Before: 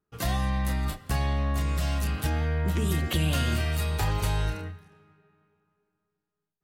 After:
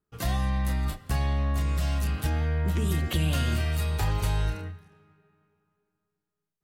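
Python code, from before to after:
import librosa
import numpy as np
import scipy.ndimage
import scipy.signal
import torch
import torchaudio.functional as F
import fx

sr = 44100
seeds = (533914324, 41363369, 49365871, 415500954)

y = fx.low_shelf(x, sr, hz=120.0, db=4.0)
y = y * librosa.db_to_amplitude(-2.0)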